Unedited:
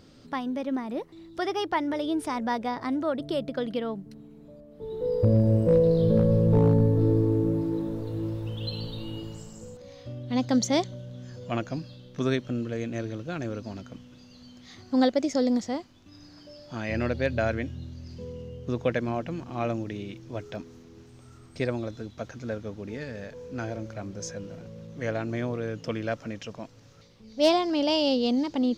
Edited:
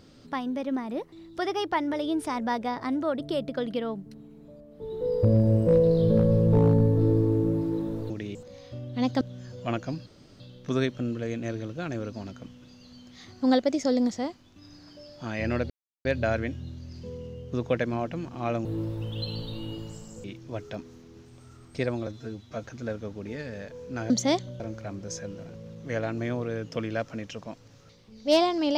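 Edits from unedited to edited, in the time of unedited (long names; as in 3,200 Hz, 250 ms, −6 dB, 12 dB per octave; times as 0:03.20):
0:08.10–0:09.69: swap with 0:19.80–0:20.05
0:10.55–0:11.05: move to 0:23.72
0:11.90: splice in room tone 0.34 s
0:17.20: splice in silence 0.35 s
0:21.88–0:22.26: time-stretch 1.5×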